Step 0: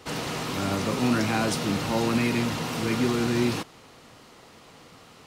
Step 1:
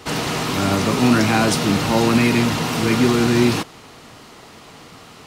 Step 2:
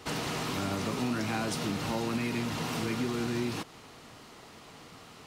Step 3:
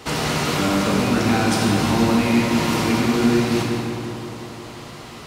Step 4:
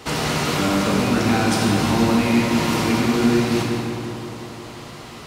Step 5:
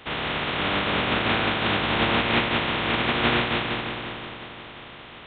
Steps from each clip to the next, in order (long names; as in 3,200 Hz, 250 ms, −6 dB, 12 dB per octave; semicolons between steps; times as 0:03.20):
notch filter 520 Hz, Q 12; level +8.5 dB
downward compressor 3 to 1, threshold −22 dBFS, peak gain reduction 9 dB; level −8.5 dB
feedback echo with a low-pass in the loop 177 ms, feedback 74%, low-pass 2,400 Hz, level −7 dB; dense smooth reverb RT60 1.9 s, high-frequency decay 0.95×, DRR −0.5 dB; level +8.5 dB
no processing that can be heard
compressing power law on the bin magnitudes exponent 0.33; level −2.5 dB; A-law companding 64 kbit/s 8,000 Hz